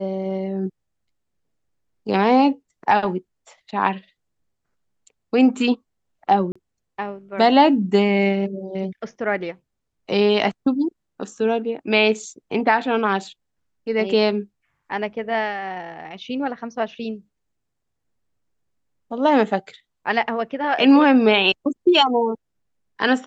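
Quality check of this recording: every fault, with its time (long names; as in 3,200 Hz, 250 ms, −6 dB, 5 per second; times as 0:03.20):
0:06.52–0:06.55: drop-out 35 ms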